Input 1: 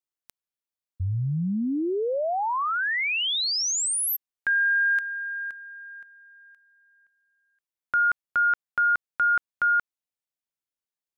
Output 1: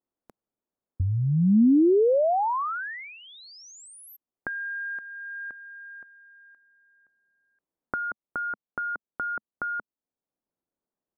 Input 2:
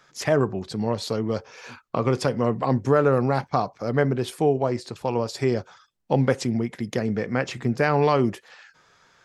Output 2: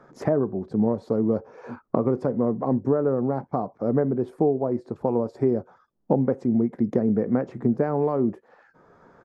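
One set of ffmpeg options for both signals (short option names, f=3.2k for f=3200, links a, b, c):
-af "acompressor=threshold=-31dB:ratio=6:attack=28:release=666:knee=6:detection=rms,firequalizer=gain_entry='entry(120,0);entry(220,8);entry(2800,-23)':delay=0.05:min_phase=1,volume=7.5dB"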